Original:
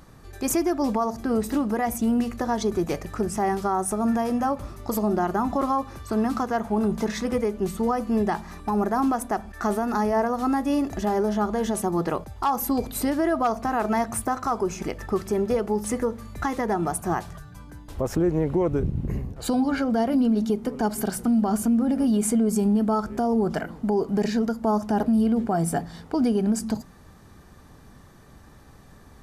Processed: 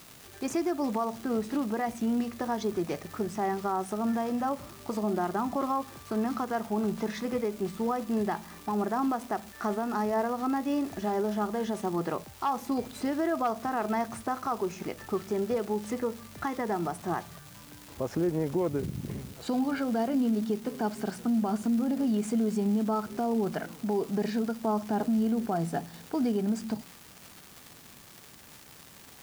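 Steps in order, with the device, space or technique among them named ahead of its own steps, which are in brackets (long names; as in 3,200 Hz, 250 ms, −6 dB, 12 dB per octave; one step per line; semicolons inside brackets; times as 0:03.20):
78 rpm shellac record (band-pass filter 120–5,300 Hz; surface crackle 310 per second −31 dBFS; white noise bed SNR 25 dB)
level −5.5 dB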